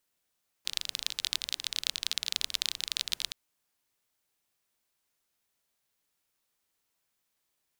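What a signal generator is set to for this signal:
rain-like ticks over hiss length 2.67 s, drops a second 26, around 3,800 Hz, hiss −23.5 dB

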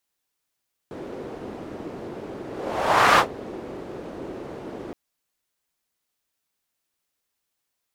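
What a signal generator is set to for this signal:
pass-by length 4.02 s, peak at 0:02.27, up 0.77 s, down 0.11 s, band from 380 Hz, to 1,200 Hz, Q 1.6, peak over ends 21 dB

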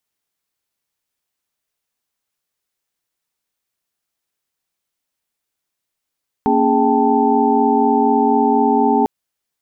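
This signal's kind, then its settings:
held notes A#3/C#4/G#4/G5/A5 sine, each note −18 dBFS 2.60 s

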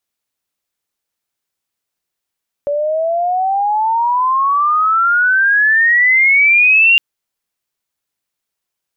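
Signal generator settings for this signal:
glide logarithmic 570 Hz → 2,800 Hz −14 dBFS → −6 dBFS 4.31 s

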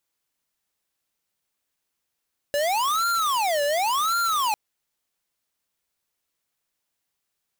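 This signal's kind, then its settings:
siren wail 574–1,390 Hz 0.91 per second square −23 dBFS 2.00 s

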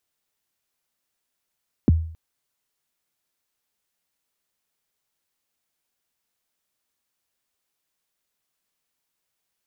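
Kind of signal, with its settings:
synth kick length 0.27 s, from 360 Hz, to 81 Hz, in 21 ms, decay 0.53 s, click off, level −9.5 dB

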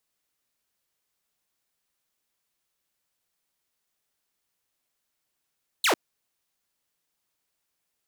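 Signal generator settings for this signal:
single falling chirp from 4,400 Hz, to 270 Hz, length 0.10 s saw, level −16.5 dB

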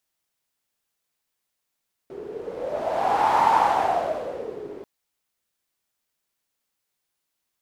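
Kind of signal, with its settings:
wind from filtered noise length 2.74 s, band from 400 Hz, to 900 Hz, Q 8, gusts 1, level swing 18.5 dB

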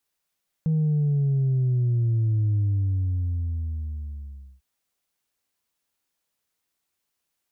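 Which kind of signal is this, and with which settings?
bass drop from 160 Hz, over 3.95 s, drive 1 dB, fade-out 2.05 s, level −19.5 dB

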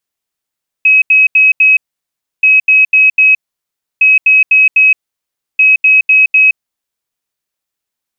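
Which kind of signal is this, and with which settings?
beeps in groups sine 2,550 Hz, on 0.17 s, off 0.08 s, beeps 4, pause 0.66 s, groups 4, −3.5 dBFS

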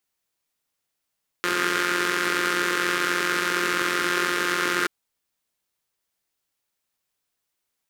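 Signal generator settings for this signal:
pulse-train model of a four-cylinder engine, steady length 3.43 s, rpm 5,300, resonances 380/1,400 Hz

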